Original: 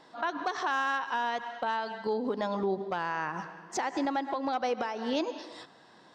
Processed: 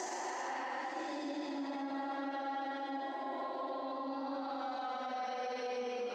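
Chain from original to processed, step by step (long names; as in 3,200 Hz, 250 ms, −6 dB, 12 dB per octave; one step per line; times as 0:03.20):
extreme stretch with random phases 6.2×, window 0.25 s, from 0:03.76
brickwall limiter −28 dBFS, peak gain reduction 10.5 dB
high-pass filter 220 Hz 12 dB per octave
level −3.5 dB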